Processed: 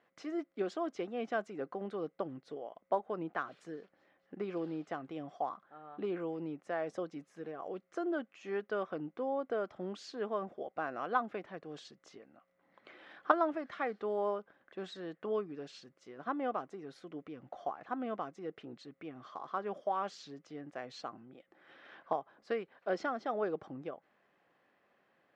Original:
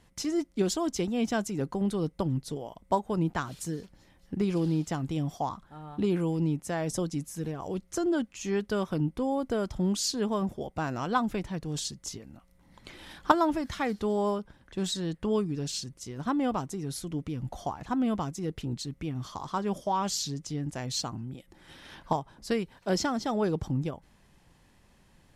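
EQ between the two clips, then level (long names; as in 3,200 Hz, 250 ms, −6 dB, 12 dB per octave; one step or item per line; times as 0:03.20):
high-pass filter 530 Hz 12 dB per octave
low-pass filter 1,600 Hz 12 dB per octave
parametric band 920 Hz −13 dB 0.22 octaves
0.0 dB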